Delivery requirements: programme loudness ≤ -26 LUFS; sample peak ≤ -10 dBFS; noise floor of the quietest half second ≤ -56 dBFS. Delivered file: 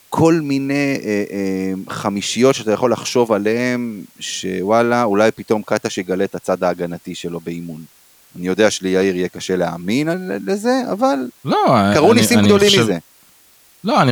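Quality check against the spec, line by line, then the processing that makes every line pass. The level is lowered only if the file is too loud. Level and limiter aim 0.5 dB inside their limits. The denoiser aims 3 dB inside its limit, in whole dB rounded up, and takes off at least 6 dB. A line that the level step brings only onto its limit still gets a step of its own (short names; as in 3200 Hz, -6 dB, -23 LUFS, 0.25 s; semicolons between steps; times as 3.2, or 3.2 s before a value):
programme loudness -17.0 LUFS: fail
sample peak -1.5 dBFS: fail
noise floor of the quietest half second -50 dBFS: fail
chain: gain -9.5 dB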